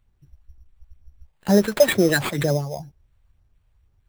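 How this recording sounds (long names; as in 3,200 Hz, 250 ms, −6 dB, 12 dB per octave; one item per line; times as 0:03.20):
phaser sweep stages 4, 2.1 Hz, lowest notch 270–2,800 Hz
aliases and images of a low sample rate 5,700 Hz, jitter 0%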